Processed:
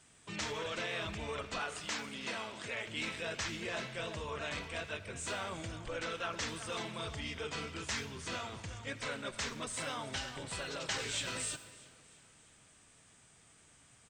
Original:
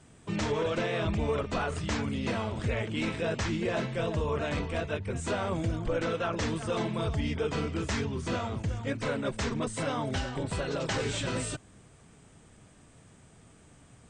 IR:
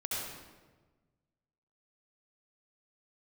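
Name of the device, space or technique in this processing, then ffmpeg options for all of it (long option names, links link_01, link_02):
saturated reverb return: -filter_complex "[0:a]asettb=1/sr,asplit=3[link_01][link_02][link_03];[link_01]atrim=end=1.604[link_04];[link_02]atrim=start=1.6:end=2.87,asetpts=PTS-STARTPTS,afade=type=in:duration=0.004:curve=qsin,afade=type=out:start_time=1.266:duration=0.004:curve=qsin,highpass=190[link_05];[link_03]atrim=start=2.866[link_06];[link_04][link_05]acrossfade=duration=0.004:curve1=hsin:curve2=qsin[link_07];[link_07][link_06]acrossfade=duration=0.004:curve1=qsin:curve2=hsin,tiltshelf=frequency=970:gain=-7.5,asplit=2[link_08][link_09];[1:a]atrim=start_sample=2205[link_10];[link_09][link_10]afir=irnorm=-1:irlink=0,asoftclip=type=tanh:threshold=-31dB,volume=-12dB[link_11];[link_08][link_11]amix=inputs=2:normalize=0,aecho=1:1:322|644|966|1288:0.0841|0.0463|0.0255|0.014,volume=-8dB"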